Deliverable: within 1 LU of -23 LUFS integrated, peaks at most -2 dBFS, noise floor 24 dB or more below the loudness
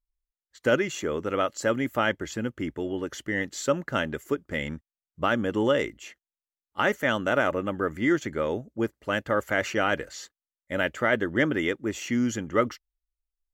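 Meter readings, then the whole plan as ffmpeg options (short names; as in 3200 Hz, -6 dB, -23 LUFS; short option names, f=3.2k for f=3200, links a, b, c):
loudness -27.5 LUFS; peak -9.5 dBFS; loudness target -23.0 LUFS
-> -af "volume=4.5dB"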